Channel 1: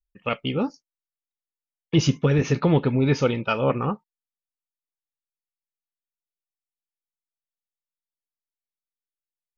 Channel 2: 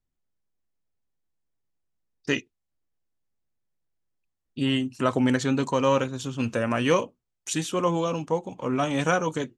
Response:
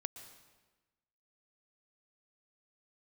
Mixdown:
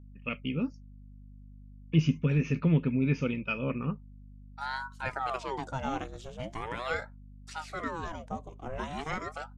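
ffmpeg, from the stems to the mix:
-filter_complex "[0:a]equalizer=f=160:t=o:w=0.33:g=12,equalizer=f=250:t=o:w=0.33:g=9,equalizer=f=800:t=o:w=0.33:g=-12,equalizer=f=2500:t=o:w=0.33:g=11,equalizer=f=4000:t=o:w=0.33:g=-9,aeval=exprs='val(0)+0.0158*(sin(2*PI*50*n/s)+sin(2*PI*2*50*n/s)/2+sin(2*PI*3*50*n/s)/3+sin(2*PI*4*50*n/s)/4+sin(2*PI*5*50*n/s)/5)':c=same,volume=0.237,asplit=2[s0][s1];[1:a]agate=range=0.0224:threshold=0.0158:ratio=3:detection=peak,aeval=exprs='val(0)*sin(2*PI*720*n/s+720*0.7/0.41*sin(2*PI*0.41*n/s))':c=same,volume=0.531[s2];[s1]apad=whole_len=422351[s3];[s2][s3]sidechaincompress=threshold=0.00355:ratio=8:attack=16:release=571[s4];[s0][s4]amix=inputs=2:normalize=0,acrossover=split=4900[s5][s6];[s6]acompressor=threshold=0.00178:ratio=4:attack=1:release=60[s7];[s5][s7]amix=inputs=2:normalize=0"

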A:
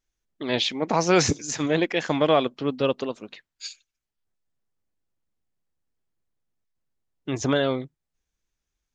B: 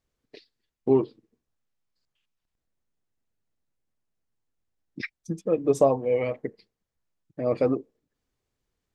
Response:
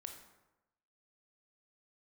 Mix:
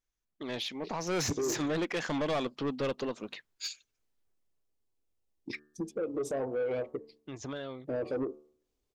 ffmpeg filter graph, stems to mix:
-filter_complex "[0:a]equalizer=f=1100:t=o:w=0.77:g=2.5,acompressor=threshold=0.0355:ratio=1.5,afade=t=in:st=0.99:d=0.32:silence=0.446684,afade=t=out:st=4.09:d=0.7:silence=0.237137[s0];[1:a]equalizer=f=160:t=o:w=0.67:g=-9,equalizer=f=400:t=o:w=0.67:g=5,equalizer=f=1600:t=o:w=0.67:g=-11,alimiter=limit=0.1:level=0:latency=1:release=116,bandreject=f=74.31:t=h:w=4,bandreject=f=148.62:t=h:w=4,bandreject=f=222.93:t=h:w=4,bandreject=f=297.24:t=h:w=4,bandreject=f=371.55:t=h:w=4,bandreject=f=445.86:t=h:w=4,bandreject=f=520.17:t=h:w=4,bandreject=f=594.48:t=h:w=4,bandreject=f=668.79:t=h:w=4,bandreject=f=743.1:t=h:w=4,bandreject=f=817.41:t=h:w=4,bandreject=f=891.72:t=h:w=4,bandreject=f=966.03:t=h:w=4,bandreject=f=1040.34:t=h:w=4,bandreject=f=1114.65:t=h:w=4,bandreject=f=1188.96:t=h:w=4,bandreject=f=1263.27:t=h:w=4,bandreject=f=1337.58:t=h:w=4,bandreject=f=1411.89:t=h:w=4,bandreject=f=1486.2:t=h:w=4,bandreject=f=1560.51:t=h:w=4,bandreject=f=1634.82:t=h:w=4,bandreject=f=1709.13:t=h:w=4,bandreject=f=1783.44:t=h:w=4,adelay=500,volume=0.841[s1];[s0][s1]amix=inputs=2:normalize=0,asoftclip=type=tanh:threshold=0.0447"

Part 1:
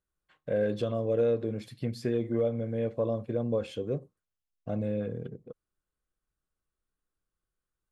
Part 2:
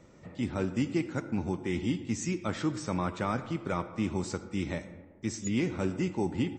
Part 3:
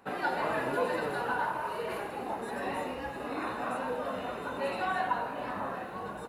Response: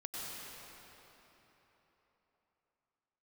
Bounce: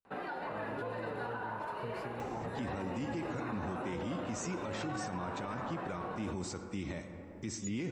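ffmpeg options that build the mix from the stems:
-filter_complex "[0:a]acrossover=split=230[s0][s1];[s1]acompressor=threshold=0.01:ratio=6[s2];[s0][s2]amix=inputs=2:normalize=0,volume=0.251[s3];[1:a]acompressor=mode=upward:threshold=0.0178:ratio=2.5,alimiter=limit=0.0668:level=0:latency=1,adelay=2200,volume=0.75,asplit=2[s4][s5];[s5]volume=0.0891[s6];[2:a]aemphasis=mode=reproduction:type=50fm,alimiter=level_in=1.78:limit=0.0631:level=0:latency=1:release=153,volume=0.562,adelay=50,volume=0.668,asplit=2[s7][s8];[s8]volume=0.299[s9];[3:a]atrim=start_sample=2205[s10];[s6][s9]amix=inputs=2:normalize=0[s11];[s11][s10]afir=irnorm=-1:irlink=0[s12];[s3][s4][s7][s12]amix=inputs=4:normalize=0,alimiter=level_in=1.88:limit=0.0631:level=0:latency=1:release=23,volume=0.531"

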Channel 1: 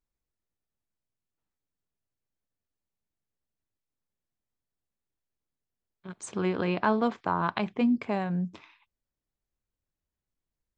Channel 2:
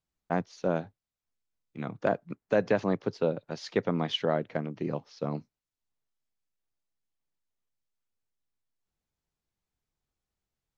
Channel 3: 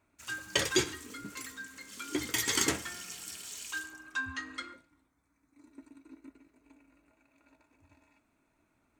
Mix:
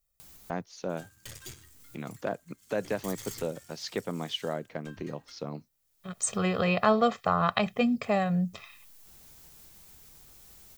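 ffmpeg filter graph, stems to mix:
-filter_complex "[0:a]aecho=1:1:1.6:0.87,volume=1.12,asplit=2[s0][s1];[1:a]acompressor=mode=upward:threshold=0.0501:ratio=2.5,adelay=200,volume=0.501[s2];[2:a]lowshelf=f=180:t=q:w=1.5:g=12.5,aeval=exprs='sgn(val(0))*max(abs(val(0))-0.00133,0)':c=same,aeval=exprs='(tanh(25.1*val(0)+0.75)-tanh(0.75))/25.1':c=same,adelay=700,volume=0.188[s3];[s1]apad=whole_len=484197[s4];[s2][s4]sidechaincompress=threshold=0.01:ratio=12:attack=42:release=363[s5];[s0][s5][s3]amix=inputs=3:normalize=0,aemphasis=mode=production:type=50kf"

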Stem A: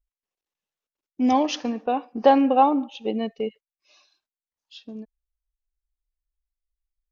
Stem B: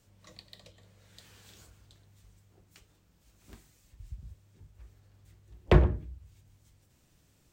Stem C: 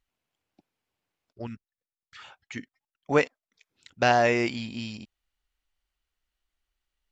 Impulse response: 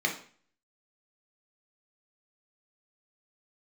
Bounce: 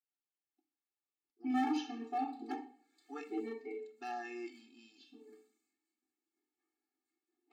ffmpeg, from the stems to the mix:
-filter_complex "[0:a]adelay=250,volume=0.211,asplit=3[s0][s1][s2];[s0]atrim=end=2.52,asetpts=PTS-STARTPTS,afade=t=out:st=2.516:d=0.004:c=hsin[s3];[s1]atrim=start=2.52:end=3.27,asetpts=PTS-STARTPTS,volume=0[s4];[s2]atrim=start=3.27,asetpts=PTS-STARTPTS,afade=t=in:d=0.004:c=hsin[s5];[s3][s4][s5]concat=n=3:v=0:a=1,asplit=2[s6][s7];[s7]volume=0.631[s8];[1:a]alimiter=limit=0.119:level=0:latency=1,adelay=1800,volume=0.2,afade=t=out:st=5.48:d=0.35:silence=0.421697,asplit=2[s9][s10];[s10]volume=0.501[s11];[2:a]volume=0.126,asplit=2[s12][s13];[s13]volume=0.178[s14];[3:a]atrim=start_sample=2205[s15];[s8][s11][s14]amix=inputs=3:normalize=0[s16];[s16][s15]afir=irnorm=-1:irlink=0[s17];[s6][s9][s12][s17]amix=inputs=4:normalize=0,volume=25.1,asoftclip=hard,volume=0.0398,afftfilt=real='re*eq(mod(floor(b*sr/1024/230),2),1)':imag='im*eq(mod(floor(b*sr/1024/230),2),1)':win_size=1024:overlap=0.75"

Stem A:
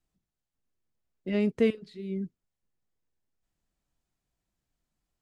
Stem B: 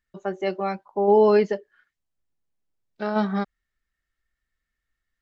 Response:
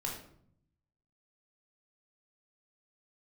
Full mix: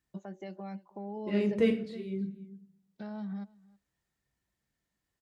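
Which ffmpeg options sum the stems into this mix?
-filter_complex "[0:a]flanger=delay=0.7:depth=9.6:regen=-44:speed=0.91:shape=sinusoidal,volume=1.06,asplit=3[s0][s1][s2];[s1]volume=0.501[s3];[s2]volume=0.126[s4];[1:a]equalizer=f=200:t=o:w=0.33:g=10,equalizer=f=400:t=o:w=0.33:g=-5,equalizer=f=1250:t=o:w=0.33:g=-8,equalizer=f=2500:t=o:w=0.33:g=-4,acompressor=threshold=0.112:ratio=6,alimiter=level_in=1.5:limit=0.0631:level=0:latency=1:release=321,volume=0.668,volume=0.562,asplit=3[s5][s6][s7];[s6]volume=0.0668[s8];[s7]apad=whole_len=229880[s9];[s0][s9]sidechaincompress=threshold=0.0126:ratio=8:attack=16:release=493[s10];[2:a]atrim=start_sample=2205[s11];[s3][s11]afir=irnorm=-1:irlink=0[s12];[s4][s8]amix=inputs=2:normalize=0,aecho=0:1:320:1[s13];[s10][s5][s12][s13]amix=inputs=4:normalize=0,highpass=65"

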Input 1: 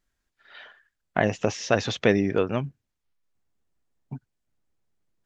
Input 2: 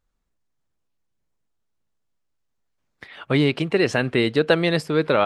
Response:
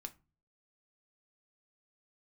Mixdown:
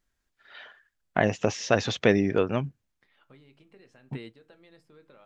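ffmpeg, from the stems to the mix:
-filter_complex "[0:a]volume=0.944,asplit=2[s0][s1];[1:a]acompressor=threshold=0.0355:ratio=4,volume=0.224,asplit=2[s2][s3];[s3]volume=0.376[s4];[s1]apad=whole_len=231936[s5];[s2][s5]sidechaingate=range=0.0224:threshold=0.00224:ratio=16:detection=peak[s6];[2:a]atrim=start_sample=2205[s7];[s4][s7]afir=irnorm=-1:irlink=0[s8];[s0][s6][s8]amix=inputs=3:normalize=0"

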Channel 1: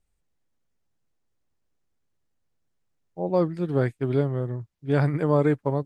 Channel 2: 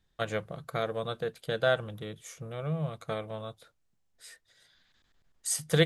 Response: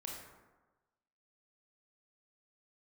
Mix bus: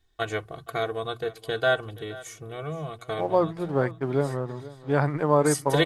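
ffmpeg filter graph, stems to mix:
-filter_complex "[0:a]aeval=exprs='sgn(val(0))*max(abs(val(0))-0.00355,0)':c=same,equalizer=f=970:t=o:w=1.7:g=9.5,volume=0.668,asplit=3[s0][s1][s2];[s1]volume=0.133[s3];[1:a]aecho=1:1:2.7:0.74,volume=1.26,asplit=2[s4][s5];[s5]volume=0.112[s6];[s2]apad=whole_len=258493[s7];[s4][s7]sidechaincompress=threshold=0.0794:ratio=8:attack=41:release=275[s8];[s3][s6]amix=inputs=2:normalize=0,aecho=0:1:474:1[s9];[s0][s8][s9]amix=inputs=3:normalize=0,bandreject=f=60:t=h:w=6,bandreject=f=120:t=h:w=6,bandreject=f=180:t=h:w=6"

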